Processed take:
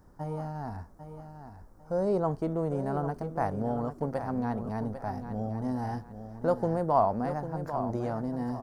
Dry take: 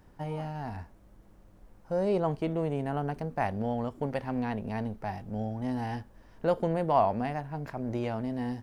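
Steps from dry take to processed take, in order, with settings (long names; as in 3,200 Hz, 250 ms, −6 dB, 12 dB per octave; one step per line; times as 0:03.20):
drawn EQ curve 890 Hz 0 dB, 1,300 Hz +2 dB, 2,700 Hz −16 dB, 5,400 Hz 0 dB
on a send: repeating echo 798 ms, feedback 30%, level −10 dB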